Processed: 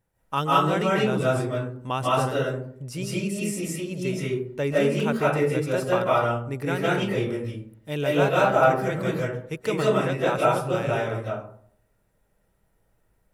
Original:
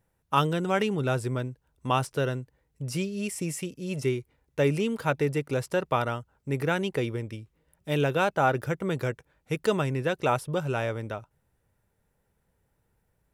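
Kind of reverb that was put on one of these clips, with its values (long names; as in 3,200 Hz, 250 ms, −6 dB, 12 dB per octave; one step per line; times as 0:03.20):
comb and all-pass reverb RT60 0.61 s, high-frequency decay 0.4×, pre-delay 120 ms, DRR −6.5 dB
level −3 dB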